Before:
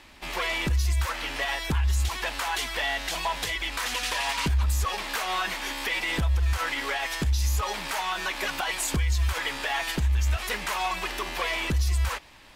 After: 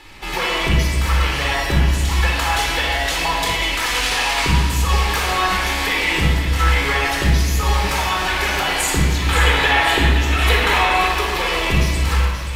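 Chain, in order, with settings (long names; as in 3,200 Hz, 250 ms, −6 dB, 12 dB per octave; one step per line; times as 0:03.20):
gain on a spectral selection 0:09.17–0:11.02, 220–4,300 Hz +8 dB
downward compressor 2.5 to 1, threshold −25 dBFS, peak gain reduction 6.5 dB
delay with a high-pass on its return 528 ms, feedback 60%, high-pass 2,900 Hz, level −9 dB
rectangular room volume 2,600 cubic metres, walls mixed, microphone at 4.1 metres
level +4.5 dB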